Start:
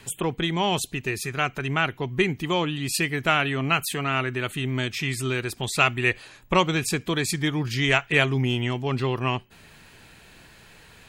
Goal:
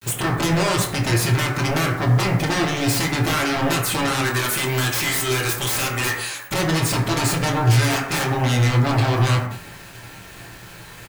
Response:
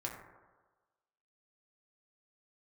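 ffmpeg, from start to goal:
-filter_complex "[0:a]agate=range=-33dB:threshold=-43dB:ratio=3:detection=peak,asettb=1/sr,asplit=3[a][b][c];[a]atrim=end=4.214[d];[b]atrim=start=4.21:end=6.54,asetpts=PTS-STARTPTS,afade=t=in:d=0.004:c=qsin,afade=t=out:st=2.326:d=0.004:c=qsin,aemphasis=mode=production:type=riaa[e];[c]atrim=start=6.536[f];[d][e]acrossfade=d=0.004:c1=hsin:c2=qsin[g];[g][f]acrossfade=d=0.004:c1=qsin:c2=hsin,acompressor=threshold=-28dB:ratio=2.5,aeval=exprs='0.237*sin(PI/2*7.94*val(0)/0.237)':c=same,acrusher=bits=5:mix=0:aa=0.000001,asplit=2[h][i];[i]adelay=25,volume=-11dB[j];[h][j]amix=inputs=2:normalize=0[k];[1:a]atrim=start_sample=2205,afade=t=out:st=0.25:d=0.01,atrim=end_sample=11466[l];[k][l]afir=irnorm=-1:irlink=0,volume=-5dB"

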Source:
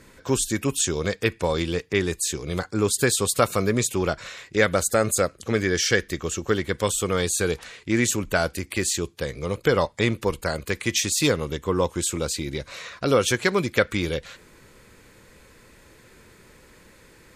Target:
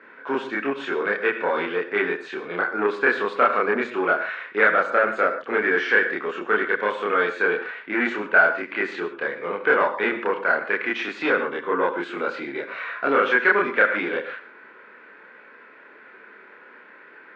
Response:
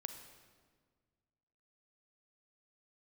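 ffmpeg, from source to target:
-filter_complex "[0:a]asplit=2[a][b];[1:a]atrim=start_sample=2205,atrim=end_sample=6174,adelay=29[c];[b][c]afir=irnorm=-1:irlink=0,volume=4.5dB[d];[a][d]amix=inputs=2:normalize=0,asoftclip=type=tanh:threshold=-13dB,highpass=f=300:w=0.5412,highpass=f=300:w=1.3066,equalizer=f=330:t=q:w=4:g=-6,equalizer=f=530:t=q:w=4:g=-5,equalizer=f=1.5k:t=q:w=4:g=9,lowpass=f=2.4k:w=0.5412,lowpass=f=2.4k:w=1.3066,volume=2.5dB"

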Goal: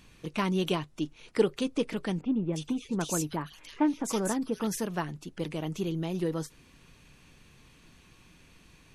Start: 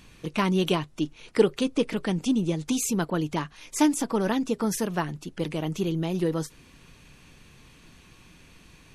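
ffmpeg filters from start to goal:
-filter_complex "[0:a]asettb=1/sr,asplit=3[a][b][c];[a]atrim=end=2.214[d];[b]atrim=start=2.21:end=4.67,asetpts=PTS-STARTPTS,afade=t=in:d=0.004:c=qsin,afade=t=out:st=2.456:d=0.004:c=qsin,acrossover=split=2300[e][f];[f]adelay=320[g];[e][g]amix=inputs=2:normalize=0,atrim=end_sample=108486[h];[c]atrim=start=4.666[i];[d][h]acrossfade=d=0.004:c1=hsin:c2=qsin[j];[j][i]acrossfade=d=0.004:c1=qsin:c2=hsin,volume=-4.5dB"

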